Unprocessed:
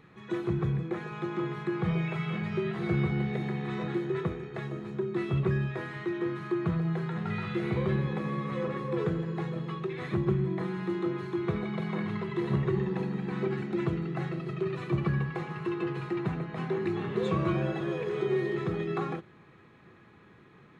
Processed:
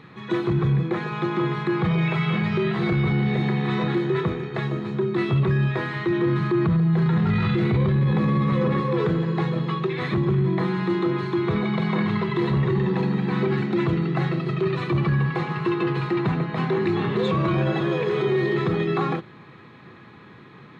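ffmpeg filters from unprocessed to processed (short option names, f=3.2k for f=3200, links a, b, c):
-filter_complex "[0:a]asettb=1/sr,asplit=3[a][b][c];[a]atrim=end=6.074[d];[b]atrim=start=6.07:end=8.81,asetpts=PTS-STARTPTS,afade=t=in:d=0.004:c=qsin,afade=t=out:st=2.736:d=0.004:c=qsin,lowshelf=f=210:g=11[e];[c]atrim=start=8.806[f];[d][e]acrossfade=d=0.004:c1=hsin:c2=qsin[g];[g][f]acrossfade=d=0.004:c1=qsin:c2=hsin,equalizer=f=125:t=o:w=1:g=8,equalizer=f=250:t=o:w=1:g=7,equalizer=f=500:t=o:w=1:g=4,equalizer=f=1k:t=o:w=1:g=8,equalizer=f=2k:t=o:w=1:g=5,equalizer=f=4k:t=o:w=1:g=11,alimiter=limit=-16dB:level=0:latency=1:release=10,volume=1.5dB"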